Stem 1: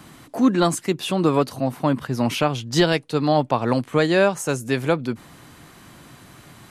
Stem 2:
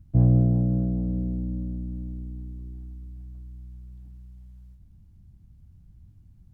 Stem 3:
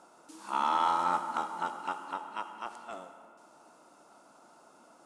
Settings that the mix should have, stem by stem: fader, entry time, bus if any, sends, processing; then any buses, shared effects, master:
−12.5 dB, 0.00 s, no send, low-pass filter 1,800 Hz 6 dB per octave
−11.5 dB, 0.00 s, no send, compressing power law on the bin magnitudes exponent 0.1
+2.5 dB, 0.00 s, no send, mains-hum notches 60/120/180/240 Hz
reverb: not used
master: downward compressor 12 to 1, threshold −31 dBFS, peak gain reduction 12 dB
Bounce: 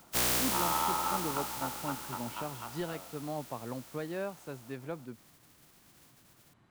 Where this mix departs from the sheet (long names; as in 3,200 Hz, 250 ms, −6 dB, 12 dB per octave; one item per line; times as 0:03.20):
stem 1 −12.5 dB → −19.0 dB
stem 3 +2.5 dB → −4.5 dB
master: missing downward compressor 12 to 1, threshold −31 dBFS, peak gain reduction 12 dB